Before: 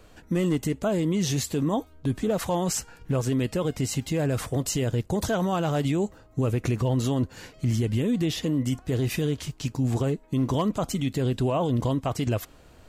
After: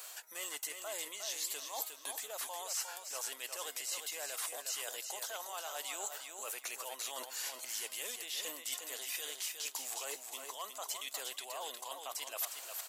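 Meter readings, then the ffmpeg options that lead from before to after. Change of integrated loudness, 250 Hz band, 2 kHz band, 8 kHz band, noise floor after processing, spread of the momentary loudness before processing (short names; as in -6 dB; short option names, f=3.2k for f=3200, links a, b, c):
-13.0 dB, -38.0 dB, -6.0 dB, -2.0 dB, -52 dBFS, 4 LU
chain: -filter_complex "[0:a]acrossover=split=4500[a][b];[b]acompressor=threshold=-44dB:ratio=4:attack=1:release=60[c];[a][c]amix=inputs=2:normalize=0,highpass=f=690:w=0.5412,highpass=f=690:w=1.3066,highshelf=f=4.5k:g=11.5,areverse,acompressor=threshold=-46dB:ratio=6,areverse,crystalizer=i=1.5:c=0,aecho=1:1:358|716|1074:0.473|0.114|0.0273,volume=2.5dB"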